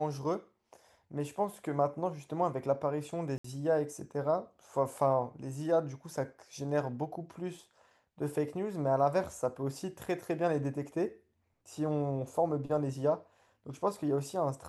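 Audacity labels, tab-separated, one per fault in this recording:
3.380000	3.440000	dropout 64 ms

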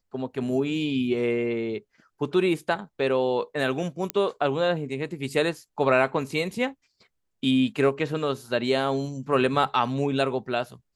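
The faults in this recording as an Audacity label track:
4.100000	4.100000	pop -10 dBFS

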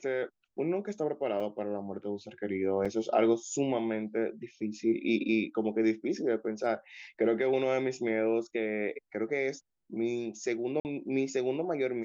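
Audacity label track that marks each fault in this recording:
1.400000	1.410000	dropout 5.1 ms
2.850000	2.860000	dropout 5.6 ms
10.800000	10.850000	dropout 49 ms

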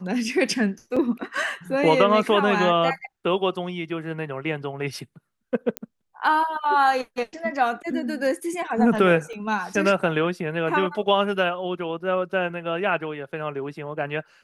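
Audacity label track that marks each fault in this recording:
0.960000	0.970000	dropout 5.1 ms
5.770000	5.770000	pop -10 dBFS
9.330000	9.330000	dropout 3.4 ms

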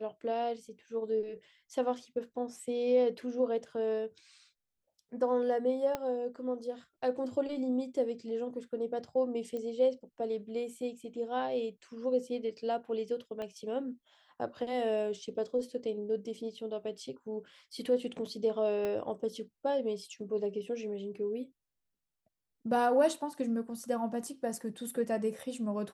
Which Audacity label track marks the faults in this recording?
5.950000	5.950000	pop -19 dBFS
9.570000	9.570000	pop -28 dBFS
13.420000	13.420000	pop -28 dBFS
18.850000	18.850000	pop -22 dBFS

